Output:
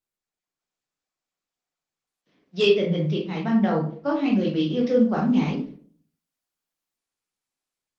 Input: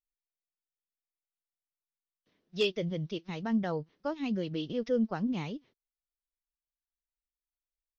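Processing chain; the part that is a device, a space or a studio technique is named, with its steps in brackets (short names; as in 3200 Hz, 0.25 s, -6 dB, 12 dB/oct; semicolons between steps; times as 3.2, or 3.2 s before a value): 2.67–4.35 LPF 5300 Hz 12 dB/oct; far-field microphone of a smart speaker (reverb RT60 0.50 s, pre-delay 14 ms, DRR -2.5 dB; HPF 140 Hz 24 dB/oct; AGC gain up to 5.5 dB; Opus 24 kbps 48000 Hz)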